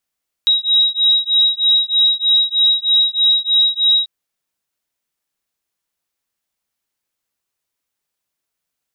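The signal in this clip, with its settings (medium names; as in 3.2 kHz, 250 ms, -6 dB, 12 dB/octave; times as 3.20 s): beating tones 3.82 kHz, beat 3.2 Hz, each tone -14.5 dBFS 3.59 s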